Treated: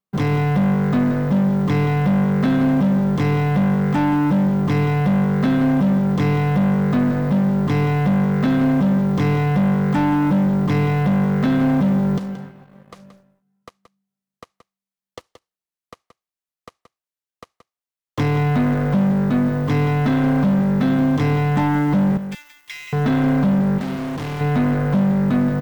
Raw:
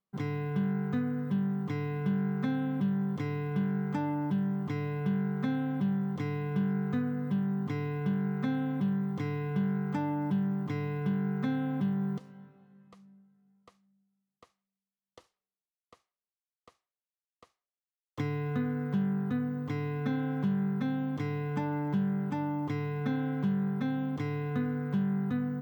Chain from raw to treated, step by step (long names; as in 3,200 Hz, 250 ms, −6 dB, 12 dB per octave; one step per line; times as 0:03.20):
0:22.17–0:22.93: Chebyshev high-pass filter 2,300 Hz, order 3
leveller curve on the samples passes 3
0:23.78–0:24.41: hard clipping −32.5 dBFS, distortion −19 dB
single-tap delay 176 ms −11 dB
level +6.5 dB